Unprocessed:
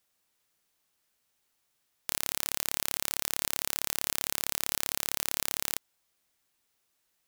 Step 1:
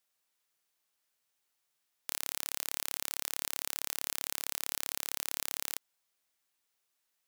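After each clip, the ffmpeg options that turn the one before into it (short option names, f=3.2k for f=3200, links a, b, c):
-af "lowshelf=f=330:g=-8.5,volume=-4.5dB"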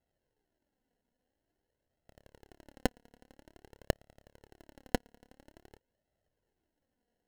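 -af "acrusher=samples=37:mix=1:aa=0.000001,flanger=delay=1.5:depth=2.7:regen=34:speed=0.49:shape=sinusoidal"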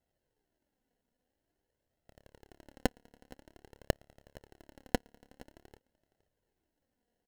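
-af "aecho=1:1:467:0.0841"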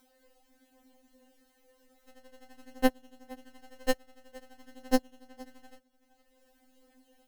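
-af "acompressor=mode=upward:threshold=-58dB:ratio=2.5,afftfilt=real='re*3.46*eq(mod(b,12),0)':imag='im*3.46*eq(mod(b,12),0)':win_size=2048:overlap=0.75,volume=8dB"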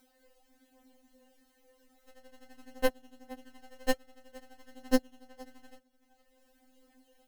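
-af "flanger=delay=0.4:depth=5.3:regen=-61:speed=0.4:shape=triangular,volume=3.5dB"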